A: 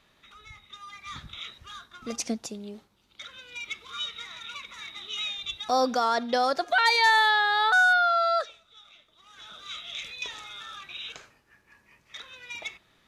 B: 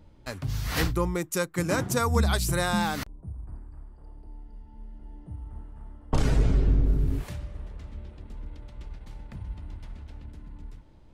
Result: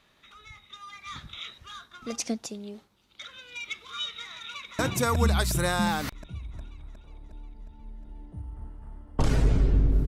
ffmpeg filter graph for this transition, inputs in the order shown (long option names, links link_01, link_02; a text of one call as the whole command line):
ffmpeg -i cue0.wav -i cue1.wav -filter_complex "[0:a]apad=whole_dur=10.07,atrim=end=10.07,atrim=end=4.792[link_01];[1:a]atrim=start=1.728:end=7.01[link_02];[link_01][link_02]acrossfade=duration=0.004:curve1=hsin:curve2=hsin,asplit=2[link_03][link_04];[link_04]afade=type=in:start_time=4.44:duration=0.01,afade=type=out:start_time=4.79:duration=0.01,aecho=0:1:360|720|1080|1440|1800|2160|2520|2880|3240|3600:1|0.6|0.36|0.216|0.1296|0.07776|0.046656|0.0279936|0.0167962|0.0100777[link_05];[link_03][link_05]amix=inputs=2:normalize=0" out.wav